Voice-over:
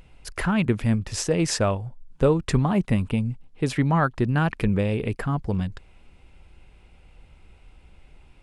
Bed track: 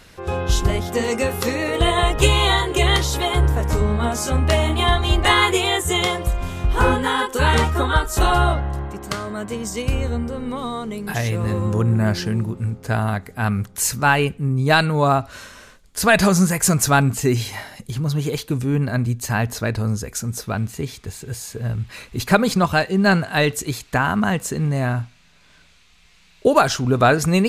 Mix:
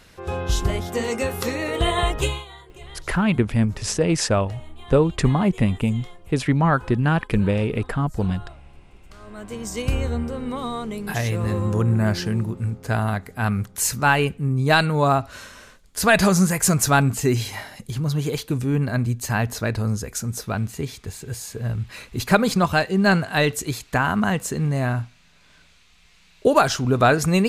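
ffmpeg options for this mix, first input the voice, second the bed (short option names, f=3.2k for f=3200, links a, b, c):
-filter_complex "[0:a]adelay=2700,volume=2.5dB[a];[1:a]volume=20.5dB,afade=t=out:st=2.1:d=0.35:silence=0.0794328,afade=t=in:st=9.12:d=0.72:silence=0.0630957[b];[a][b]amix=inputs=2:normalize=0"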